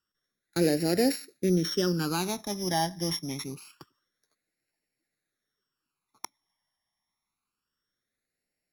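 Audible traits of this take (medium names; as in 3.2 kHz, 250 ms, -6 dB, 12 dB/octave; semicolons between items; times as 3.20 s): a buzz of ramps at a fixed pitch in blocks of 8 samples; phasing stages 12, 0.26 Hz, lowest notch 440–1100 Hz; AC-3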